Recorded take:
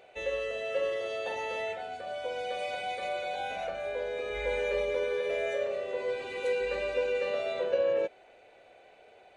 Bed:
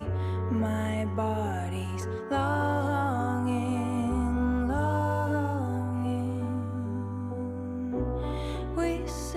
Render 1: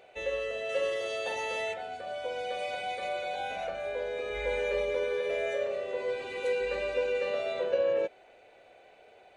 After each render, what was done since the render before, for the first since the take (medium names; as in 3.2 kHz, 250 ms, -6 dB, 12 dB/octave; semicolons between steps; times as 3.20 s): 0.69–1.74 s: treble shelf 4 kHz +9.5 dB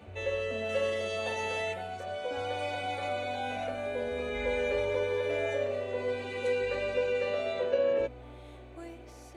add bed -16.5 dB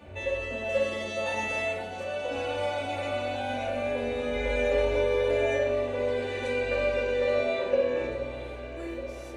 echo whose repeats swap between lows and highs 416 ms, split 1.2 kHz, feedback 81%, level -10.5 dB; simulated room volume 880 m³, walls furnished, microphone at 2.5 m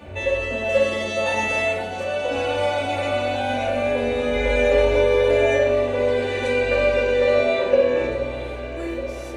trim +8 dB